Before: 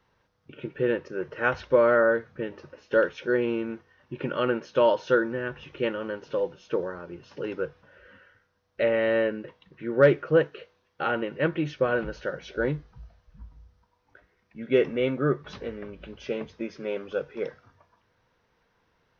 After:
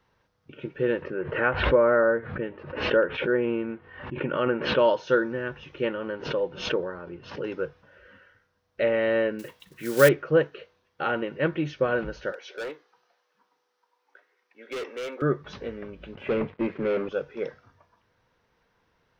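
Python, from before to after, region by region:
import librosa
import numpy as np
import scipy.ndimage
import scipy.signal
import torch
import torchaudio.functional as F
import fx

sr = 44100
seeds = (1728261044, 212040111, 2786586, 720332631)

y = fx.chain(x, sr, fx.lowpass(hz=3000.0, slope=24),
    fx.env_lowpass_down(base_hz=1900.0, full_db=-18.0),
    fx.pre_swell(db_per_s=73.0), at=(1.02, 4.79))
y = fx.chain(y, sr, fx.lowpass(hz=3600.0, slope=12),
    fx.pre_swell(db_per_s=100.0), at=(5.83, 7.44))
y = fx.chain(y, sr, fx.block_float(bits=5),
    fx.high_shelf(hz=2200.0, db=11.5), at=(9.39, 10.09))
y = fx.chain(y, sr, fx.highpass(hz=400.0, slope=24),
    fx.notch(hz=640.0, q=6.3),
    fx.overload_stage(gain_db=30.5), at=(12.32, 15.22))
y = fx.chain(y, sr, fx.ellip_bandpass(low_hz=100.0, high_hz=2600.0, order=3, stop_db=40),
    fx.leveller(passes=3),
    fx.air_absorb(metres=290.0), at=(16.15, 17.09))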